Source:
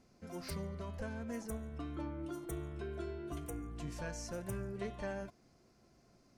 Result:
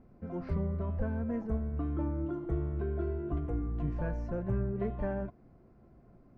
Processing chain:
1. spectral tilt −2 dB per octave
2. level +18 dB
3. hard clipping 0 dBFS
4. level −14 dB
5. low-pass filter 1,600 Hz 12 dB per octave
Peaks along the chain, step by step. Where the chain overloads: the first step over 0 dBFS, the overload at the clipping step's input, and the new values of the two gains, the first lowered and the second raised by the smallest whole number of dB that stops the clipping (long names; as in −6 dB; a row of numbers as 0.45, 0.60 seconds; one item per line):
−24.0, −6.0, −6.0, −20.0, −20.0 dBFS
no step passes full scale